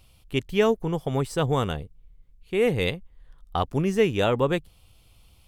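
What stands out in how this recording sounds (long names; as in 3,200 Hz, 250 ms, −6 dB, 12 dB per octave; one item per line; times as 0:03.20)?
background noise floor −57 dBFS
spectral slope −5.0 dB per octave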